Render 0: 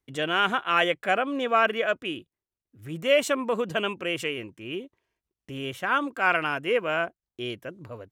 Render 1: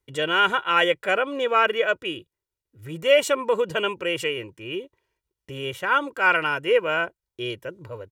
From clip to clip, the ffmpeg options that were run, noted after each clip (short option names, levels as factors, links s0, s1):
-af "aecho=1:1:2.1:0.58,volume=1.19"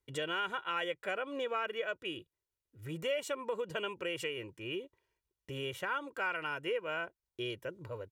-af "acompressor=threshold=0.0316:ratio=3,volume=0.531"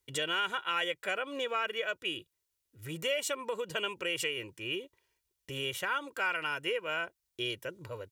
-af "highshelf=f=2200:g=10.5"